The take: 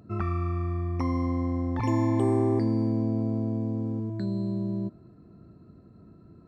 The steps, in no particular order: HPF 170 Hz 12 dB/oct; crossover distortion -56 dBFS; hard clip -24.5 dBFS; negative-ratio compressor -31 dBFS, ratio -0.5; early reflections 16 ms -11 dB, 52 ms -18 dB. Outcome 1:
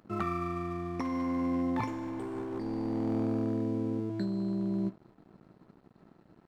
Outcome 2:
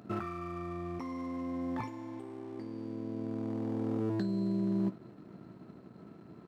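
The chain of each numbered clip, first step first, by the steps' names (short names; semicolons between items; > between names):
HPF > hard clip > early reflections > crossover distortion > negative-ratio compressor; negative-ratio compressor > hard clip > early reflections > crossover distortion > HPF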